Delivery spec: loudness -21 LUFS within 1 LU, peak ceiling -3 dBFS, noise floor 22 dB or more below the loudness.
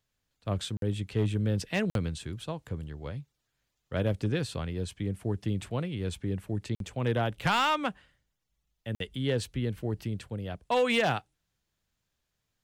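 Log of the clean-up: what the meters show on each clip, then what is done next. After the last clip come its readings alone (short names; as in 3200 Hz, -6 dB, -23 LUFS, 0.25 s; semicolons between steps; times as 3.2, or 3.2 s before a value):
clipped 0.3%; flat tops at -19.0 dBFS; dropouts 4; longest dropout 52 ms; loudness -31.5 LUFS; peak -19.0 dBFS; loudness target -21.0 LUFS
-> clip repair -19 dBFS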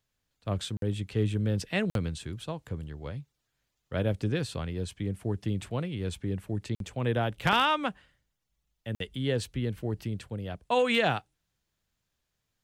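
clipped 0.0%; dropouts 4; longest dropout 52 ms
-> interpolate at 0.77/1.9/6.75/8.95, 52 ms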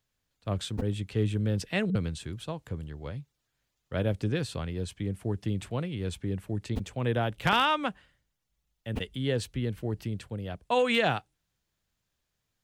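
dropouts 0; loudness -31.0 LUFS; peak -10.0 dBFS; loudness target -21.0 LUFS
-> gain +10 dB; limiter -3 dBFS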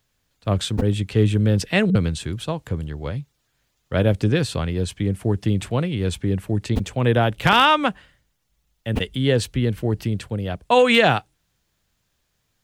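loudness -21.0 LUFS; peak -3.0 dBFS; noise floor -71 dBFS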